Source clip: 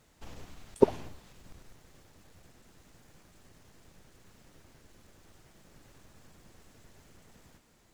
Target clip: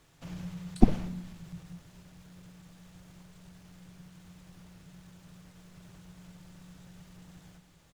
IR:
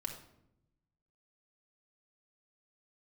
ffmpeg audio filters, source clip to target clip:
-filter_complex "[0:a]asplit=2[s0][s1];[s1]asetrate=22050,aresample=44100,atempo=2,volume=0.891[s2];[s0][s2]amix=inputs=2:normalize=0,afreqshift=-180,asplit=2[s3][s4];[1:a]atrim=start_sample=2205[s5];[s4][s5]afir=irnorm=-1:irlink=0,volume=0.335[s6];[s3][s6]amix=inputs=2:normalize=0,volume=0.841"

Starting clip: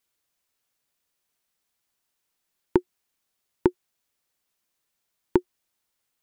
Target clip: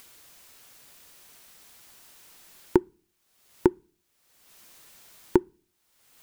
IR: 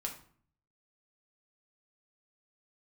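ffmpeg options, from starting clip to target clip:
-filter_complex "[0:a]acompressor=mode=upward:threshold=0.0224:ratio=2.5,asplit=2[s0][s1];[1:a]atrim=start_sample=2205,asetrate=57330,aresample=44100[s2];[s1][s2]afir=irnorm=-1:irlink=0,volume=0.0891[s3];[s0][s3]amix=inputs=2:normalize=0"

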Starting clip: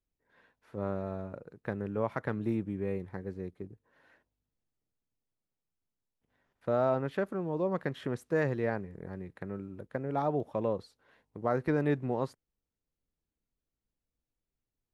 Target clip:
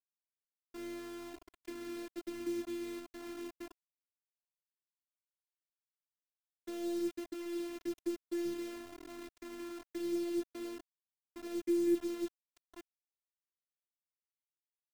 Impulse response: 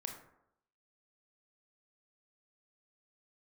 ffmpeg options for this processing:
-filter_complex "[0:a]acrossover=split=180|770[s0][s1][s2];[s2]acompressor=threshold=0.00447:ratio=16[s3];[s0][s1][s3]amix=inputs=3:normalize=0,asplit=3[s4][s5][s6];[s4]bandpass=f=270:t=q:w=8,volume=1[s7];[s5]bandpass=f=2290:t=q:w=8,volume=0.501[s8];[s6]bandpass=f=3010:t=q:w=8,volume=0.355[s9];[s7][s8][s9]amix=inputs=3:normalize=0,aecho=1:1:858|1716|2574:0.0708|0.0311|0.0137,acrusher=bits=8:mix=0:aa=0.000001,afftfilt=real='hypot(re,im)*cos(PI*b)':imag='0':win_size=512:overlap=0.75,volume=2.82"

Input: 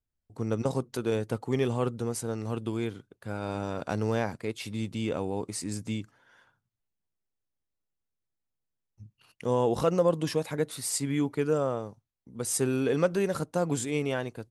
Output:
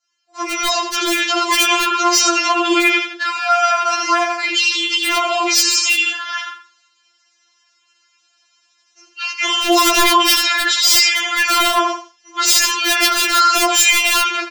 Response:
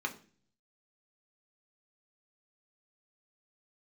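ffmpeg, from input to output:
-filter_complex "[0:a]highpass=1200,highshelf=f=4800:g=5,aecho=1:1:82|164|246:0.316|0.0727|0.0167,aresample=16000,aresample=44100,asoftclip=type=tanh:threshold=0.0501[s0];[1:a]atrim=start_sample=2205,atrim=end_sample=3528,asetrate=57330,aresample=44100[s1];[s0][s1]afir=irnorm=-1:irlink=0,asettb=1/sr,asplit=3[s2][s3][s4];[s2]atrim=end=2.884[s5];[s3]atrim=start=2.88:end=5.04,asetpts=PTS-STARTPTS,afade=t=in:d=0.004:c=qsin,afade=t=out:st=2.156:d=0.004:c=qsin,acompressor=threshold=0.00355:ratio=16[s6];[s4]atrim=start=5.036[s7];[s5][s6]acrossfade=d=0.004:c1=hsin:c2=qsin[s8];[s8][s7]acrossfade=d=0.004:c1=qsin:c2=hsin,aeval=exprs='(mod(31.6*val(0)+1,2)-1)/31.6':c=same,adynamicequalizer=threshold=0.002:dfrequency=3100:dqfactor=1.3:tfrequency=3100:tqfactor=1.3:attack=5:release=100:ratio=0.375:range=2.5:mode=boostabove:tftype=bell,dynaudnorm=f=350:g=7:m=3.98,alimiter=level_in=29.9:limit=0.891:release=50:level=0:latency=1,afftfilt=real='re*4*eq(mod(b,16),0)':imag='im*4*eq(mod(b,16),0)':win_size=2048:overlap=0.75,volume=0.794"

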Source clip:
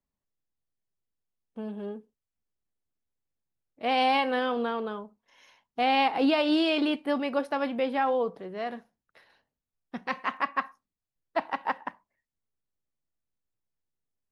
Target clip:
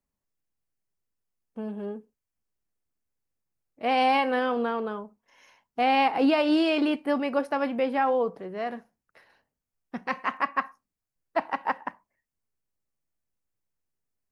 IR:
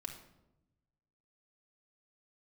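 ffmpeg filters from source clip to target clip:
-af "equalizer=f=3600:w=2.8:g=-7.5,volume=1.26"

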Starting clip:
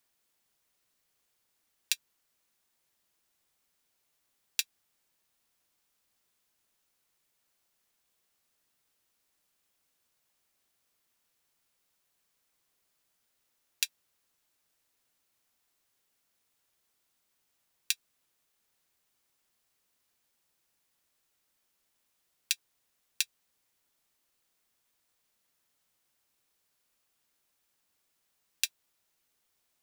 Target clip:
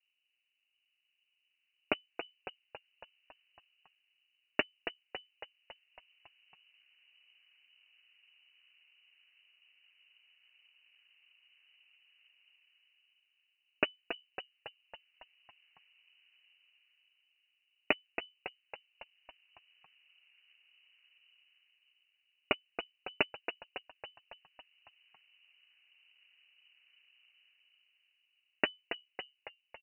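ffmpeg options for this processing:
-filter_complex "[0:a]dynaudnorm=f=340:g=7:m=5.31,asplit=2[s0][s1];[s1]acrusher=samples=24:mix=1:aa=0.000001:lfo=1:lforange=14.4:lforate=1.7,volume=0.501[s2];[s0][s2]amix=inputs=2:normalize=0,adynamicsmooth=sensitivity=8:basefreq=530,asplit=2[s3][s4];[s4]asplit=7[s5][s6][s7][s8][s9][s10][s11];[s5]adelay=277,afreqshift=-70,volume=0.355[s12];[s6]adelay=554,afreqshift=-140,volume=0.207[s13];[s7]adelay=831,afreqshift=-210,volume=0.119[s14];[s8]adelay=1108,afreqshift=-280,volume=0.0692[s15];[s9]adelay=1385,afreqshift=-350,volume=0.0403[s16];[s10]adelay=1662,afreqshift=-420,volume=0.0232[s17];[s11]adelay=1939,afreqshift=-490,volume=0.0135[s18];[s12][s13][s14][s15][s16][s17][s18]amix=inputs=7:normalize=0[s19];[s3][s19]amix=inputs=2:normalize=0,lowpass=f=2600:t=q:w=0.5098,lowpass=f=2600:t=q:w=0.6013,lowpass=f=2600:t=q:w=0.9,lowpass=f=2600:t=q:w=2.563,afreqshift=-3000,volume=1.41"

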